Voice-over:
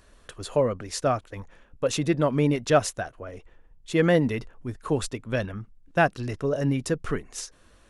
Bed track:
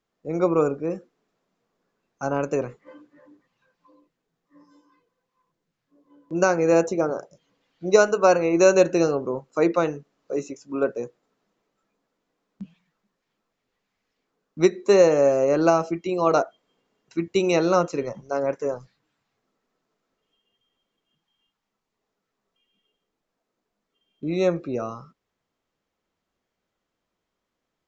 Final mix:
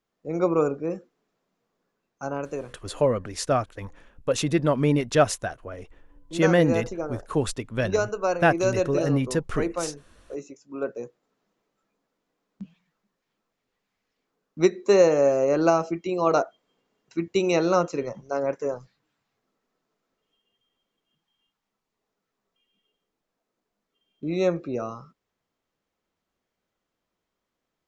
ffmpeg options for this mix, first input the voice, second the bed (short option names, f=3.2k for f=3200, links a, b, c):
-filter_complex "[0:a]adelay=2450,volume=1dB[a];[1:a]volume=5dB,afade=t=out:st=1.8:d=0.79:silence=0.473151,afade=t=in:st=10.7:d=0.7:silence=0.473151[b];[a][b]amix=inputs=2:normalize=0"